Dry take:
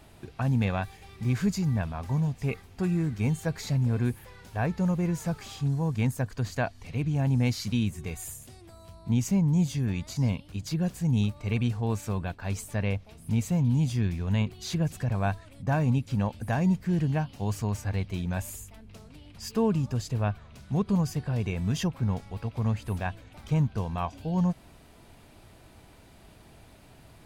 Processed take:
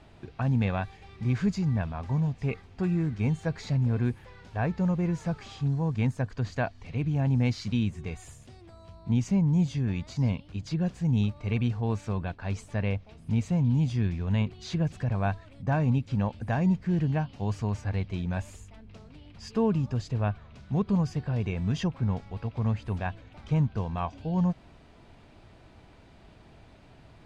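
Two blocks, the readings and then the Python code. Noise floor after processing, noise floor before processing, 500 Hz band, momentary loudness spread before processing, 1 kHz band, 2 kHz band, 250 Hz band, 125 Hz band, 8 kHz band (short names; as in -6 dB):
-54 dBFS, -54 dBFS, -0.5 dB, 8 LU, -0.5 dB, -1.0 dB, 0.0 dB, 0.0 dB, n/a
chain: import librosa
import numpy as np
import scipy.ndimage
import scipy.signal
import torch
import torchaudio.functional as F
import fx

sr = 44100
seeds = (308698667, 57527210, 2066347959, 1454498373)

y = fx.air_absorb(x, sr, metres=110.0)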